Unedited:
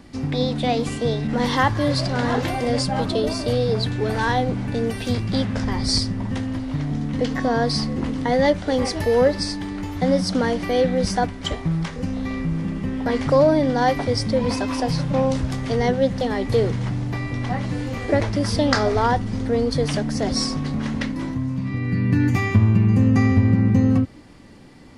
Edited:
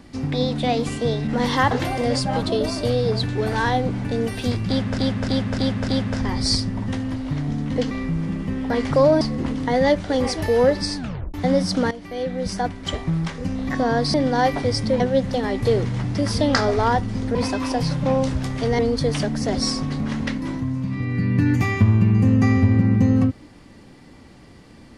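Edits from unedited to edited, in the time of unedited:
0:01.71–0:02.34: remove
0:05.31–0:05.61: repeat, 5 plays
0:07.34–0:07.79: swap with 0:12.27–0:13.57
0:09.55: tape stop 0.37 s
0:10.49–0:11.59: fade in, from −15 dB
0:14.43–0:15.87: move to 0:19.53
0:17.01–0:18.32: remove

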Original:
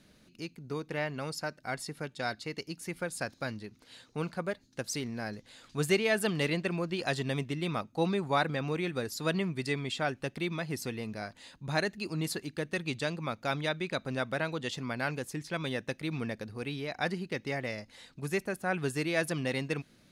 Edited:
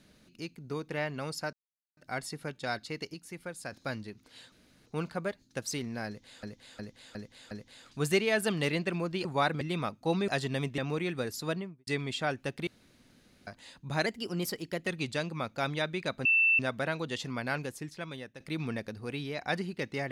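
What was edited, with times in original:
0:01.53: splice in silence 0.44 s
0:02.70–0:03.28: clip gain −5.5 dB
0:04.08: splice in room tone 0.34 s
0:05.29–0:05.65: repeat, 5 plays
0:07.03–0:07.53: swap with 0:08.20–0:08.56
0:09.13–0:09.65: fade out and dull
0:10.45–0:11.25: fill with room tone
0:11.84–0:12.74: play speed 111%
0:14.12: insert tone 2,670 Hz −21 dBFS 0.34 s
0:15.06–0:15.93: fade out, to −14.5 dB

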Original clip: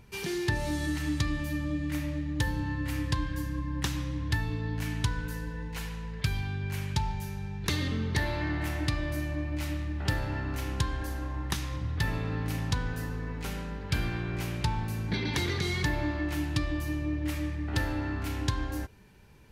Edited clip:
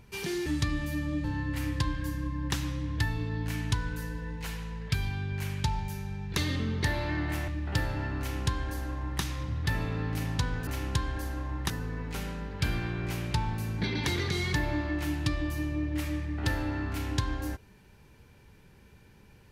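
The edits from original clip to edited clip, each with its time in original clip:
0:00.46–0:01.04: remove
0:01.82–0:02.56: remove
0:08.80–0:09.81: remove
0:10.52–0:11.55: duplicate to 0:13.00

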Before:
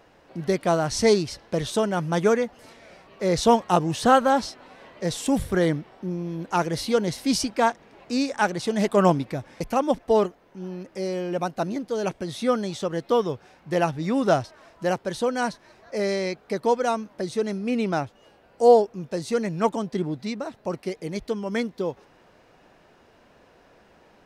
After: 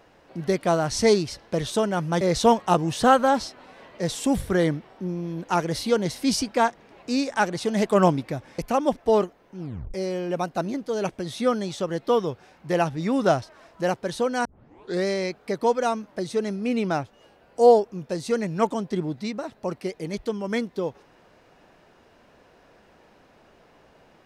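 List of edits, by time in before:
0:02.21–0:03.23: remove
0:10.61: tape stop 0.35 s
0:15.47: tape start 0.60 s

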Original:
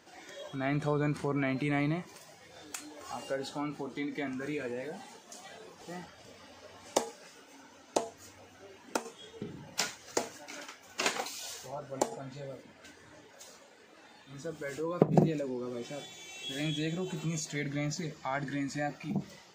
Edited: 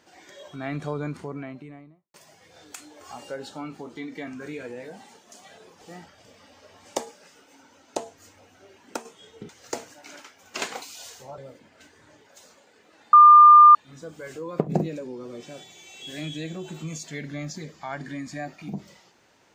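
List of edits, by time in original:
0:00.84–0:02.14: fade out and dull
0:09.49–0:09.93: remove
0:11.82–0:12.42: remove
0:14.17: insert tone 1,200 Hz −7 dBFS 0.62 s

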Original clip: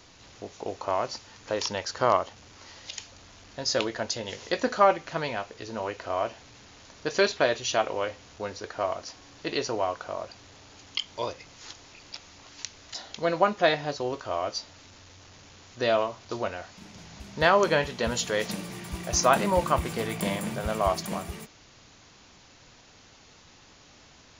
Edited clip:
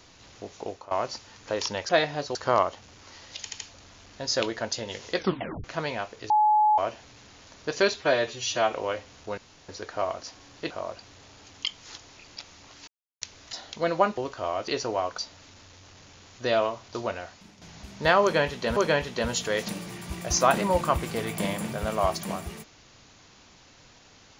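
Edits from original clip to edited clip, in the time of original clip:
0:00.64–0:00.91: fade out, to −19.5 dB
0:02.97: stutter 0.08 s, 3 plays
0:04.54: tape stop 0.48 s
0:05.68–0:06.16: beep over 850 Hz −17 dBFS
0:07.34–0:07.85: time-stretch 1.5×
0:08.50: splice in room tone 0.31 s
0:09.52–0:10.03: move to 0:14.55
0:11.10–0:11.53: remove
0:12.63: splice in silence 0.34 s
0:13.59–0:14.05: move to 0:01.89
0:16.58–0:16.98: fade out, to −8.5 dB
0:17.59–0:18.13: repeat, 2 plays

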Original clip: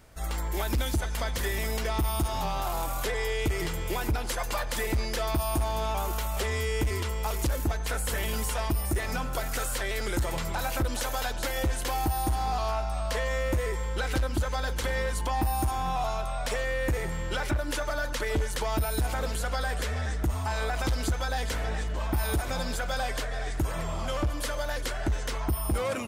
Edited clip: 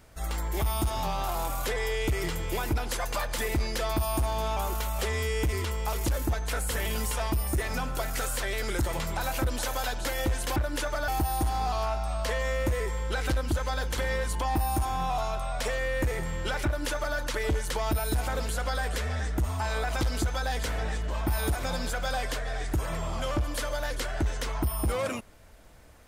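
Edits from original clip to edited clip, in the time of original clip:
0:00.62–0:02.00: remove
0:17.51–0:18.03: duplicate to 0:11.94

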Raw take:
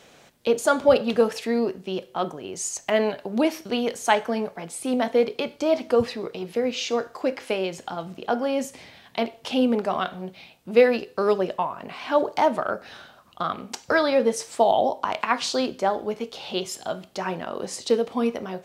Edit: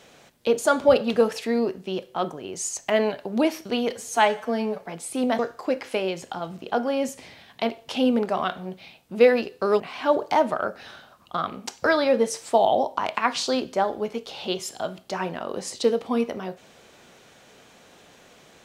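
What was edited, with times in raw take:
0:03.90–0:04.50: time-stretch 1.5×
0:05.09–0:06.95: remove
0:11.36–0:11.86: remove

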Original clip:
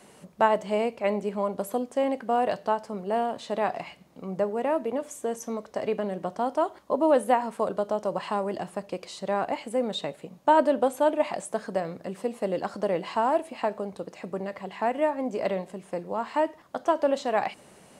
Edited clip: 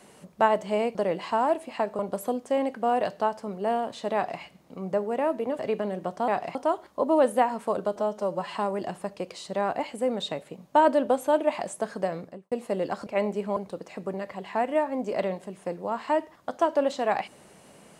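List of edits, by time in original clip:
0:00.95–0:01.45: swap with 0:12.79–0:13.83
0:03.60–0:03.87: duplicate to 0:06.47
0:05.05–0:05.78: remove
0:07.88–0:08.27: time-stretch 1.5×
0:11.89–0:12.24: fade out and dull

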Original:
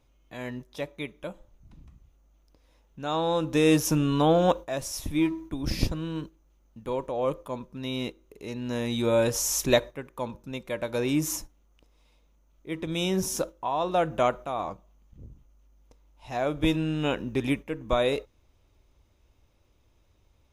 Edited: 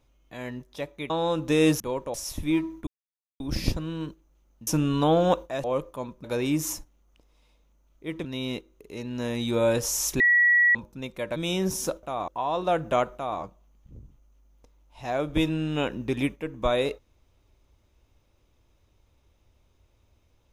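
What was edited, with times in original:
0:01.10–0:03.15: remove
0:03.85–0:04.82: swap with 0:06.82–0:07.16
0:05.55: splice in silence 0.53 s
0:09.71–0:10.26: beep over 1,930 Hz −16 dBFS
0:10.87–0:12.88: move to 0:07.76
0:14.42–0:14.67: duplicate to 0:13.55

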